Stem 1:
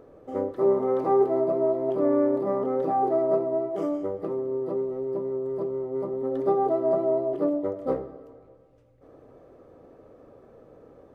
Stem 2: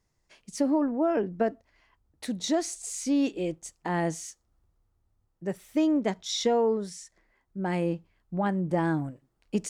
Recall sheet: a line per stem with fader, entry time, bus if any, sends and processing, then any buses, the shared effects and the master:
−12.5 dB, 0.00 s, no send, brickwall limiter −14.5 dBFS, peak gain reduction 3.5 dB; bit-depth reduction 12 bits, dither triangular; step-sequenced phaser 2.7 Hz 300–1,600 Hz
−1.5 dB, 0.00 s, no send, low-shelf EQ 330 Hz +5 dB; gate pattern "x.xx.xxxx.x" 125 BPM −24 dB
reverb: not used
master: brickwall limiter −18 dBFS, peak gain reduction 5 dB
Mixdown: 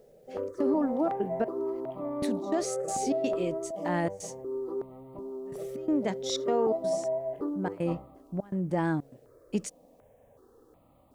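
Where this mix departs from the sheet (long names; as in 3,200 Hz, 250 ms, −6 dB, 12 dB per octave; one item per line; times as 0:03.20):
stem 1 −12.5 dB → −4.5 dB
stem 2: missing low-shelf EQ 330 Hz +5 dB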